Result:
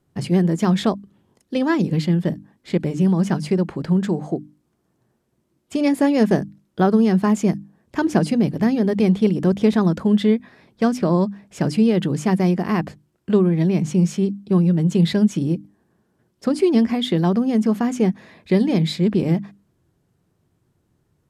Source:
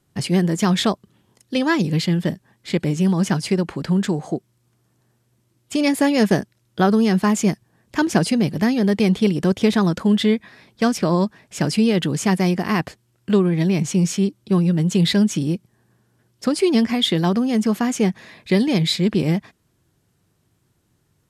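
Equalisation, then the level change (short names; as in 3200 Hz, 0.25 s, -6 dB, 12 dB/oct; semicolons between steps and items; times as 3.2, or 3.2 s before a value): tilt shelf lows +5 dB, about 1400 Hz; notches 50/100/150/200/250/300 Hz; notches 60/120 Hz; -3.5 dB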